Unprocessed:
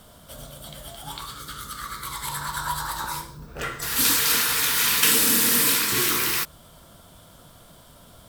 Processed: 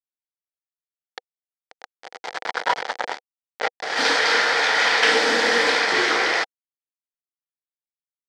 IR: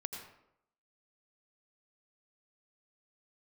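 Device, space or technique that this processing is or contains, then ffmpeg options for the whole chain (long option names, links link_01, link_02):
hand-held game console: -af "acrusher=bits=3:mix=0:aa=0.000001,highpass=470,equalizer=frequency=490:width_type=q:width=4:gain=8,equalizer=frequency=770:width_type=q:width=4:gain=9,equalizer=frequency=1100:width_type=q:width=4:gain=-6,equalizer=frequency=1900:width_type=q:width=4:gain=4,equalizer=frequency=2700:width_type=q:width=4:gain=-9,equalizer=frequency=3800:width_type=q:width=4:gain=-6,lowpass=frequency=4300:width=0.5412,lowpass=frequency=4300:width=1.3066,volume=8dB"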